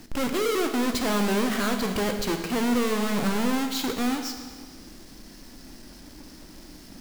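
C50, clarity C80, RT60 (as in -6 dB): 7.0 dB, 8.0 dB, 1.6 s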